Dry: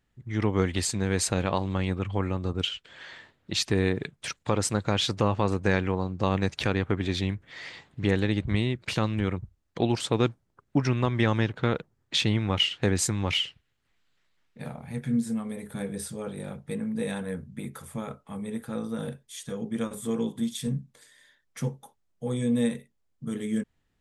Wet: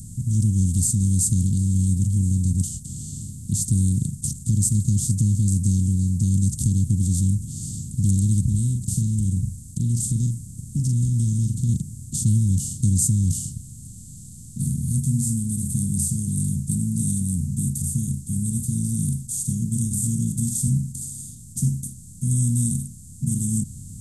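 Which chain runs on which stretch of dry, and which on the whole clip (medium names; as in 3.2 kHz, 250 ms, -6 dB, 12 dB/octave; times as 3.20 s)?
8.48–11.69 s: compression 1.5:1, threshold -37 dBFS + doubling 42 ms -11 dB
whole clip: spectral levelling over time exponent 0.4; inverse Chebyshev band-stop 710–2100 Hz, stop band 80 dB; peaking EQ 740 Hz -14.5 dB 0.6 oct; trim +7.5 dB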